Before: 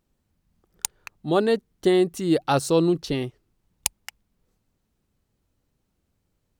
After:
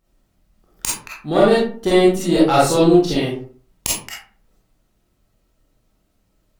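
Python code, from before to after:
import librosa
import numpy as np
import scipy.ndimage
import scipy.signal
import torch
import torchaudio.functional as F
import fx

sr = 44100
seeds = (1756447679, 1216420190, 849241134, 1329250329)

y = fx.diode_clip(x, sr, knee_db=-12.5)
y = fx.rev_freeverb(y, sr, rt60_s=0.45, hf_ratio=0.55, predelay_ms=5, drr_db=-8.0)
y = y * librosa.db_to_amplitude(1.0)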